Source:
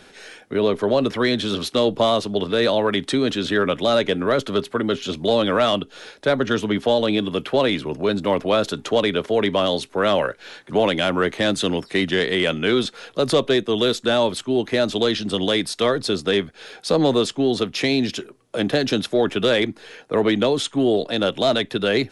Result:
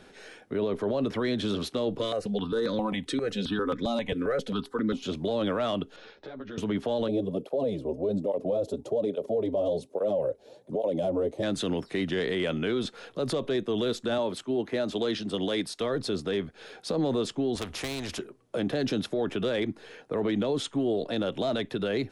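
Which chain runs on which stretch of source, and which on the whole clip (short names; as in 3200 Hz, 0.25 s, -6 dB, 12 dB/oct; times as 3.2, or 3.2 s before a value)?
1.99–5.03 notch 630 Hz, Q 7.7 + comb 4 ms, depth 47% + step phaser 7.5 Hz 210–2900 Hz
5.96–6.58 LPF 5300 Hz 24 dB/oct + compressor 5:1, threshold -31 dBFS + ensemble effect
7.08–11.43 EQ curve 350 Hz 0 dB, 560 Hz +9 dB, 1500 Hz -20 dB, 4700 Hz -7 dB, 11000 Hz -1 dB + tape flanging out of phase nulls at 1.2 Hz, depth 6.5 ms
14.18–15.81 low shelf 100 Hz -11.5 dB + three-band expander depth 40%
17.55–18.19 resonant low shelf 100 Hz +12 dB, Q 1.5 + overloaded stage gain 14 dB + spectral compressor 2:1
whole clip: tilt shelf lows +3.5 dB, about 1200 Hz; limiter -14 dBFS; gain -6 dB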